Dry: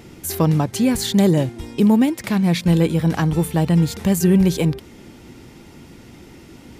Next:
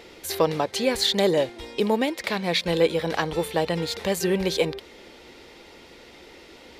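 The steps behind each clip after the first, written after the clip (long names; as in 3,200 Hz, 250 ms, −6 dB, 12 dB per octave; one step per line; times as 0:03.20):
octave-band graphic EQ 125/250/500/1,000/2,000/4,000 Hz −11/−4/+12/+4/+7/+12 dB
level −8.5 dB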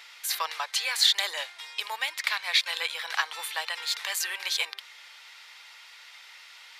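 high-pass filter 1,100 Hz 24 dB per octave
level +2 dB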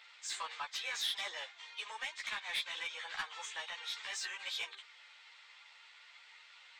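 hearing-aid frequency compression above 3,000 Hz 1.5 to 1
soft clipping −22.5 dBFS, distortion −12 dB
string-ensemble chorus
level −5.5 dB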